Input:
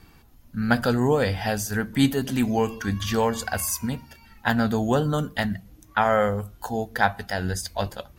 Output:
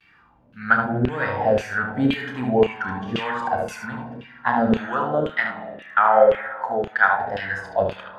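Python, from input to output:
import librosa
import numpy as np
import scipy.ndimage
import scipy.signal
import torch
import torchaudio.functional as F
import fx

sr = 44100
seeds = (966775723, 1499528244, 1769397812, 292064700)

y = fx.spec_box(x, sr, start_s=0.78, length_s=0.3, low_hz=400.0, high_hz=8900.0, gain_db=-26)
y = fx.peak_eq(y, sr, hz=73.0, db=-11.5, octaves=2.9, at=(4.8, 7.12))
y = y + 10.0 ** (-4.0 / 20.0) * np.pad(y, (int(73 * sr / 1000.0), 0))[:len(y)]
y = fx.rev_spring(y, sr, rt60_s=1.9, pass_ms=(56,), chirp_ms=30, drr_db=6.0)
y = fx.vibrato(y, sr, rate_hz=0.97, depth_cents=66.0)
y = fx.filter_lfo_bandpass(y, sr, shape='saw_down', hz=1.9, low_hz=450.0, high_hz=2900.0, q=3.3)
y = fx.bass_treble(y, sr, bass_db=12, treble_db=-7)
y = fx.doubler(y, sr, ms=32.0, db=-9)
y = y * 10.0 ** (9.0 / 20.0)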